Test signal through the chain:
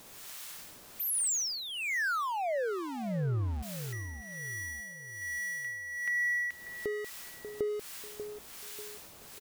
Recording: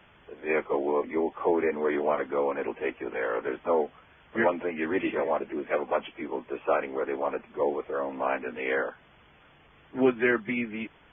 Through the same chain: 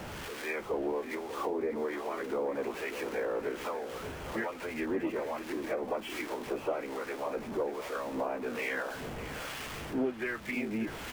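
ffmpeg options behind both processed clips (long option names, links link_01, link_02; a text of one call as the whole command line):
ffmpeg -i in.wav -filter_complex "[0:a]aeval=exprs='val(0)+0.5*0.0168*sgn(val(0))':channel_layout=same,acompressor=threshold=-31dB:ratio=6,acrossover=split=870[link_01][link_02];[link_01]aeval=exprs='val(0)*(1-0.7/2+0.7/2*cos(2*PI*1.2*n/s))':channel_layout=same[link_03];[link_02]aeval=exprs='val(0)*(1-0.7/2-0.7/2*cos(2*PI*1.2*n/s))':channel_layout=same[link_04];[link_03][link_04]amix=inputs=2:normalize=0,asplit=2[link_05][link_06];[link_06]adelay=590,lowpass=frequency=1500:poles=1,volume=-9dB,asplit=2[link_07][link_08];[link_08]adelay=590,lowpass=frequency=1500:poles=1,volume=0.43,asplit=2[link_09][link_10];[link_10]adelay=590,lowpass=frequency=1500:poles=1,volume=0.43,asplit=2[link_11][link_12];[link_12]adelay=590,lowpass=frequency=1500:poles=1,volume=0.43,asplit=2[link_13][link_14];[link_14]adelay=590,lowpass=frequency=1500:poles=1,volume=0.43[link_15];[link_07][link_09][link_11][link_13][link_15]amix=inputs=5:normalize=0[link_16];[link_05][link_16]amix=inputs=2:normalize=0,volume=2.5dB" out.wav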